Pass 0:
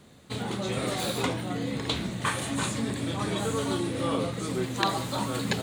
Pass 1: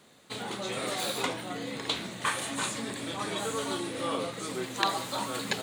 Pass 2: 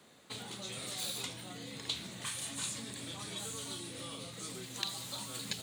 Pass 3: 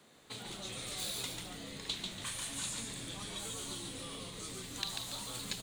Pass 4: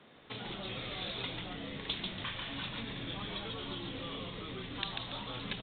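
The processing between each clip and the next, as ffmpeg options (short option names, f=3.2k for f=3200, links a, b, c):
-af "highpass=f=510:p=1"
-filter_complex "[0:a]acrossover=split=170|3000[a][b][c];[b]acompressor=threshold=-45dB:ratio=10[d];[a][d][c]amix=inputs=3:normalize=0,volume=-2.5dB"
-filter_complex "[0:a]asplit=5[a][b][c][d][e];[b]adelay=142,afreqshift=-87,volume=-4.5dB[f];[c]adelay=284,afreqshift=-174,volume=-13.9dB[g];[d]adelay=426,afreqshift=-261,volume=-23.2dB[h];[e]adelay=568,afreqshift=-348,volume=-32.6dB[i];[a][f][g][h][i]amix=inputs=5:normalize=0,volume=-1.5dB"
-af "aresample=8000,aresample=44100,volume=4.5dB"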